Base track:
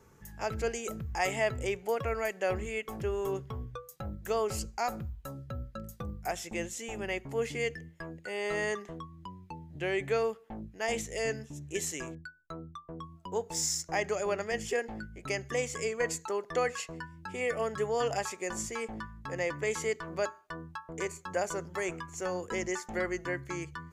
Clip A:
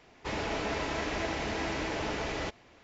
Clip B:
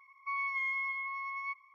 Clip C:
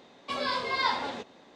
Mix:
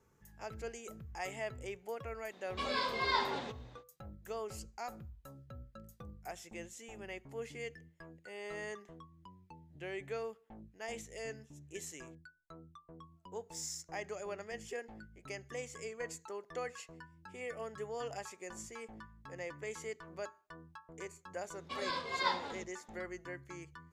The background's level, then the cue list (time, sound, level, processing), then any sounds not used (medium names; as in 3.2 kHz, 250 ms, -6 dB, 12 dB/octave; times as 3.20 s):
base track -11 dB
2.29 s: add C -5 dB, fades 0.05 s
21.41 s: add C -5 dB + upward expansion, over -38 dBFS
not used: A, B